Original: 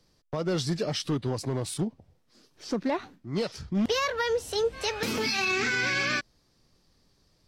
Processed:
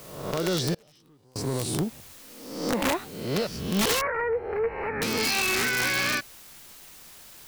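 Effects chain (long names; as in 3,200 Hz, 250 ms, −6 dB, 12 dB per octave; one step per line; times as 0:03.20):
peak hold with a rise ahead of every peak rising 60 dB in 0.83 s
bit-depth reduction 8 bits, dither triangular
wrap-around overflow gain 18 dB
0:00.74–0:01.36: gate with flip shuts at −25 dBFS, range −31 dB
0:04.01–0:05.02: elliptic low-pass filter 2,200 Hz, stop band 40 dB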